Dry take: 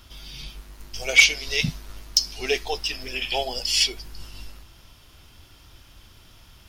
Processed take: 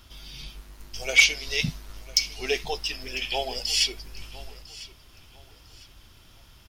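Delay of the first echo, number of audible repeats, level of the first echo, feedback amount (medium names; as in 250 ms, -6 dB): 1001 ms, 2, -19.0 dB, 30%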